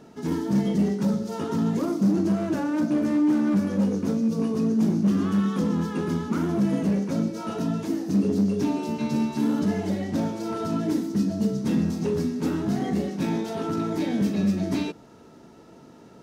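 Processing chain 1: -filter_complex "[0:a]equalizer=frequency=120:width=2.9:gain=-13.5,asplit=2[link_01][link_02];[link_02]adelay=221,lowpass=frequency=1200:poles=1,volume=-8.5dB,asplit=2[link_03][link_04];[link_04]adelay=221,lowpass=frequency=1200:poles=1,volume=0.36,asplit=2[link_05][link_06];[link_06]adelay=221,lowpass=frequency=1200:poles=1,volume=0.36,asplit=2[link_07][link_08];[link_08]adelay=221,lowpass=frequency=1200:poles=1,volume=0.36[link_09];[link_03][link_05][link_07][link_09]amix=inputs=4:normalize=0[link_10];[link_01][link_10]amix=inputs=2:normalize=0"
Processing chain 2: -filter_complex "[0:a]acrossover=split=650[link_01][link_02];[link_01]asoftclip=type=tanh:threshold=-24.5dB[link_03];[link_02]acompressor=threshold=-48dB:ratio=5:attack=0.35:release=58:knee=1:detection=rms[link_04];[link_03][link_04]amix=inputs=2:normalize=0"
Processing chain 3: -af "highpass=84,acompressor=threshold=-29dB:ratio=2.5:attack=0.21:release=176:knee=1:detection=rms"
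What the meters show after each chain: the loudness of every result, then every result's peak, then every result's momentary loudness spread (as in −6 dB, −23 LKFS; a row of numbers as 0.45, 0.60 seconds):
−25.5, −29.5, −32.0 LKFS; −12.0, −23.5, −22.5 dBFS; 6, 4, 4 LU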